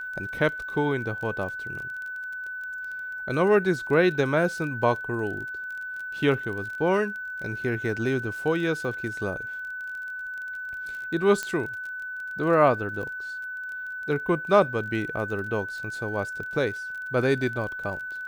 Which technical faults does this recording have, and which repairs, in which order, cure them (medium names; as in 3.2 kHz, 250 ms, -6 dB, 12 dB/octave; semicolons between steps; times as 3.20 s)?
crackle 23 per s -34 dBFS
whine 1.5 kHz -32 dBFS
11.43 s: pop -14 dBFS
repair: de-click; band-stop 1.5 kHz, Q 30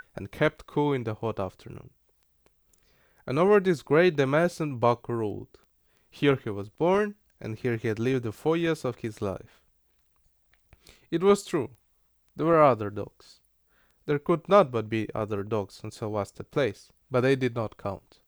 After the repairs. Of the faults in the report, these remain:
nothing left